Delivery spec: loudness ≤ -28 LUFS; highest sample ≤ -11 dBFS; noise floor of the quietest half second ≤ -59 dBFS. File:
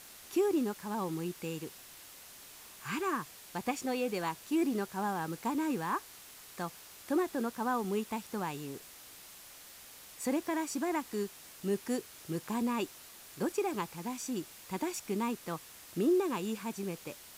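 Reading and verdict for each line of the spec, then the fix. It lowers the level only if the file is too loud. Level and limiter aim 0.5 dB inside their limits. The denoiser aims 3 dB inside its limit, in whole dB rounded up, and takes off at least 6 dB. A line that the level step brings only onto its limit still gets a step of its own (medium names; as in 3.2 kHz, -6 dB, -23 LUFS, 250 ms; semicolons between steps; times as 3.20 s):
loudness -35.5 LUFS: pass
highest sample -20.0 dBFS: pass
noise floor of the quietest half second -53 dBFS: fail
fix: noise reduction 9 dB, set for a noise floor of -53 dBFS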